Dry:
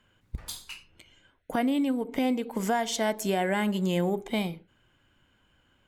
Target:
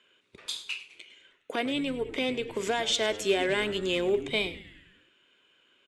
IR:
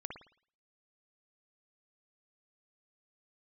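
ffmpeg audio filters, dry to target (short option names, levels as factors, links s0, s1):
-filter_complex "[0:a]volume=10,asoftclip=hard,volume=0.1,highpass=380,equalizer=f=400:t=q:w=4:g=9,equalizer=f=810:t=q:w=4:g=-9,equalizer=f=2500:t=q:w=4:g=9,equalizer=f=3600:t=q:w=4:g=9,lowpass=f=9400:w=0.5412,lowpass=f=9400:w=1.3066,asplit=7[s0][s1][s2][s3][s4][s5][s6];[s1]adelay=103,afreqshift=-120,volume=0.141[s7];[s2]adelay=206,afreqshift=-240,volume=0.0861[s8];[s3]adelay=309,afreqshift=-360,volume=0.0525[s9];[s4]adelay=412,afreqshift=-480,volume=0.032[s10];[s5]adelay=515,afreqshift=-600,volume=0.0195[s11];[s6]adelay=618,afreqshift=-720,volume=0.0119[s12];[s0][s7][s8][s9][s10][s11][s12]amix=inputs=7:normalize=0"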